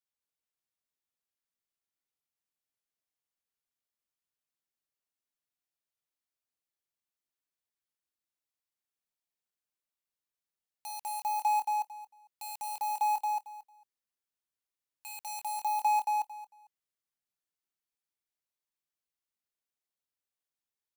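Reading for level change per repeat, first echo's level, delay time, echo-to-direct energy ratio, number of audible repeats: -15.0 dB, -4.0 dB, 0.225 s, -4.0 dB, 3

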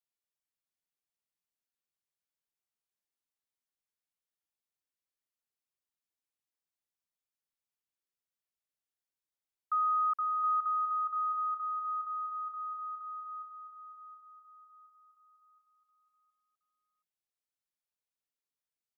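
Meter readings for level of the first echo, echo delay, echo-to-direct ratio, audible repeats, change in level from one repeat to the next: -10.5 dB, 0.72 s, -9.5 dB, 4, -6.5 dB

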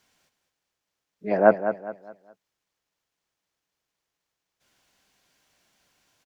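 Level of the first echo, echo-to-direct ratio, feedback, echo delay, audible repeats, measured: -10.0 dB, -9.5 dB, 34%, 0.206 s, 3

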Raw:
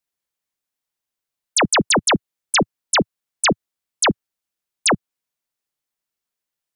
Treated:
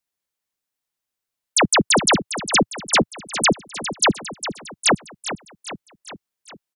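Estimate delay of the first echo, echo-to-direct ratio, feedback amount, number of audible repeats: 0.405 s, -10.0 dB, 55%, 5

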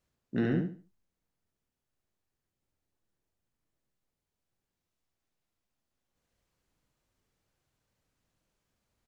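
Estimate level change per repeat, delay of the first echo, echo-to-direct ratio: -11.5 dB, 71 ms, -4.0 dB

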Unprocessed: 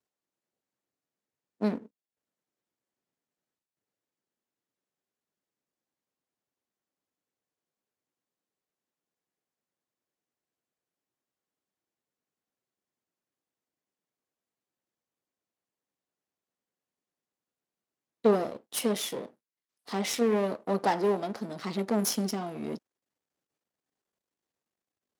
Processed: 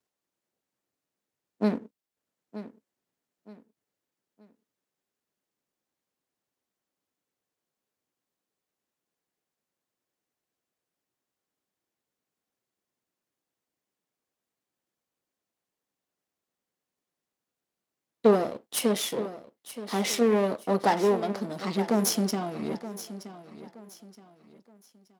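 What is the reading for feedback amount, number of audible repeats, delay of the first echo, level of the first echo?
33%, 3, 0.923 s, -14.0 dB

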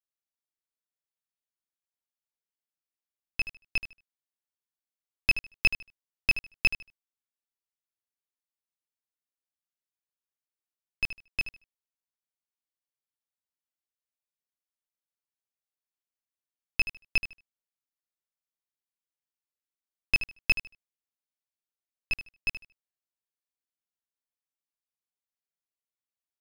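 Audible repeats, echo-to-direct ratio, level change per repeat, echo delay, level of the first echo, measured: 2, -12.0 dB, -14.0 dB, 76 ms, -12.0 dB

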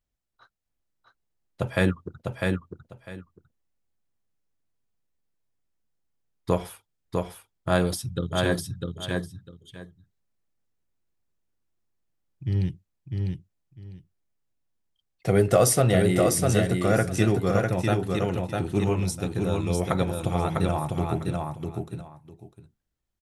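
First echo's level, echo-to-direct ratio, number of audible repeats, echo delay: -3.5 dB, -3.5 dB, 2, 0.651 s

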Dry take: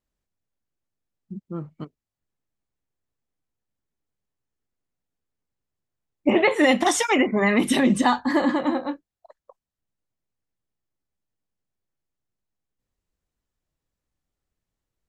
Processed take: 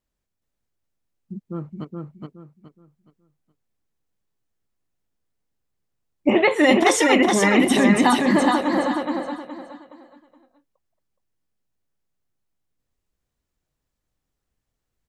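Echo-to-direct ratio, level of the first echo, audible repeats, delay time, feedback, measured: -2.5 dB, -3.0 dB, 4, 0.42 s, 30%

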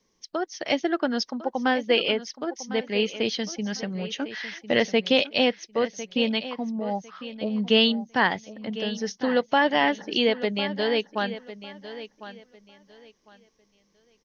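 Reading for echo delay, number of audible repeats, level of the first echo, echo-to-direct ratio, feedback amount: 1.052 s, 2, -14.0 dB, -13.5 dB, 23%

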